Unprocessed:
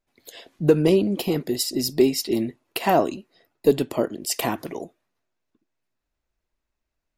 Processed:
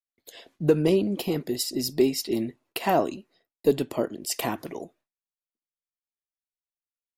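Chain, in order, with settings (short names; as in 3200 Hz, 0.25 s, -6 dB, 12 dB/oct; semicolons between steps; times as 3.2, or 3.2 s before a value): expander -50 dBFS; gain -3.5 dB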